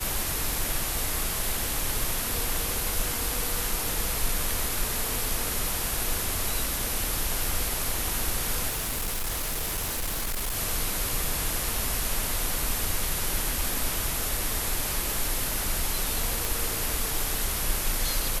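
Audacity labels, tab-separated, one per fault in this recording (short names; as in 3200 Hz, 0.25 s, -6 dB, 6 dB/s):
8.690000	10.570000	clipped -26 dBFS
16.450000	16.450000	pop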